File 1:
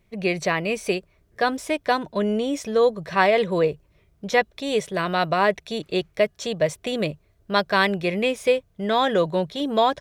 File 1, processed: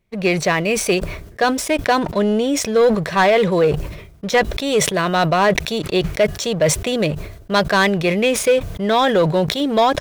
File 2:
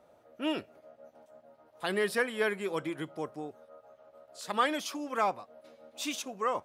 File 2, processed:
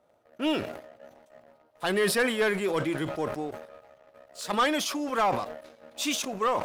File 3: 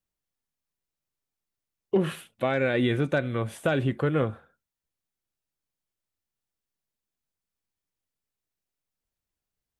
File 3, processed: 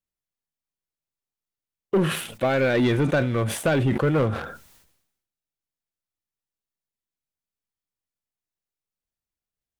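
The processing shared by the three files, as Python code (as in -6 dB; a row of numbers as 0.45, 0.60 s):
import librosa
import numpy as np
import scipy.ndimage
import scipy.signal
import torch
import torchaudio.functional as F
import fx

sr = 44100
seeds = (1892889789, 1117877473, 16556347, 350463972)

y = fx.leveller(x, sr, passes=2)
y = fx.sustainer(y, sr, db_per_s=67.0)
y = F.gain(torch.from_numpy(y), -1.5).numpy()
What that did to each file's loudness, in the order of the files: +5.5, +5.0, +4.0 LU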